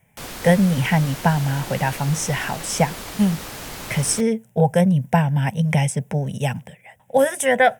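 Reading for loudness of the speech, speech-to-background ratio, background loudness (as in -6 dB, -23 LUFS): -20.5 LUFS, 12.5 dB, -33.0 LUFS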